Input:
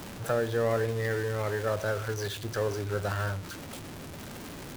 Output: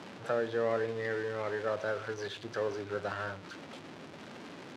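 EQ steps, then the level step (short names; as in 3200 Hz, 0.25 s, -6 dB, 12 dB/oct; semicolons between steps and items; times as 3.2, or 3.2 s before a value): BPF 200–4200 Hz; -3.0 dB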